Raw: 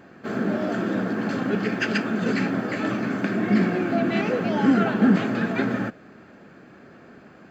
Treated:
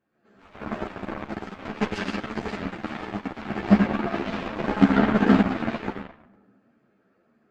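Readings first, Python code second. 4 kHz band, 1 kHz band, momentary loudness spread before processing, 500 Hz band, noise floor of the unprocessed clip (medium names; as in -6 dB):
-2.0 dB, 0.0 dB, 7 LU, -3.5 dB, -49 dBFS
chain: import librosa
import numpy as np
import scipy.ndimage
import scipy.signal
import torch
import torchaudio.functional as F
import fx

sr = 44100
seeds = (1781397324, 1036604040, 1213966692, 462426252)

y = fx.rev_freeverb(x, sr, rt60_s=1.8, hf_ratio=0.35, predelay_ms=80, drr_db=-8.0)
y = fx.cheby_harmonics(y, sr, harmonics=(3, 7), levels_db=(-20, -19), full_scale_db=3.0)
y = fx.ensemble(y, sr)
y = y * 10.0 ** (-3.5 / 20.0)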